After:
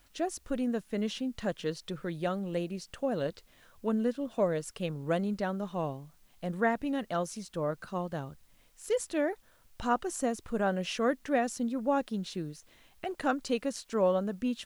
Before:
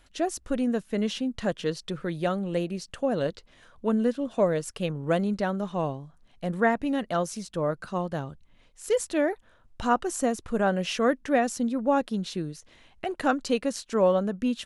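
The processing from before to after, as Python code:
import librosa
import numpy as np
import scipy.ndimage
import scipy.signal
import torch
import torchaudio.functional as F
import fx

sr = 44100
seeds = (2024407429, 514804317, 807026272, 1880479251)

y = fx.dmg_noise_colour(x, sr, seeds[0], colour='white', level_db=-65.0)
y = y * 10.0 ** (-5.0 / 20.0)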